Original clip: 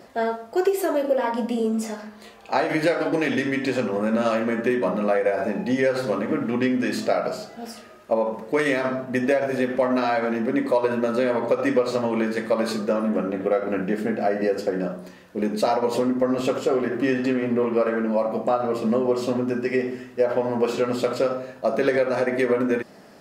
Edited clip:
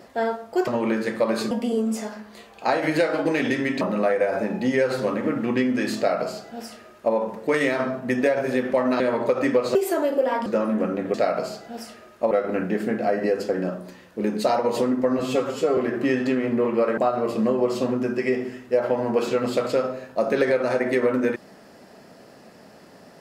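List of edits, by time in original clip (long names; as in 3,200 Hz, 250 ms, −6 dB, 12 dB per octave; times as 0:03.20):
0:00.67–0:01.38: swap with 0:11.97–0:12.81
0:03.68–0:04.86: remove
0:07.02–0:08.19: duplicate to 0:13.49
0:10.05–0:11.22: remove
0:16.37–0:16.76: time-stretch 1.5×
0:17.96–0:18.44: remove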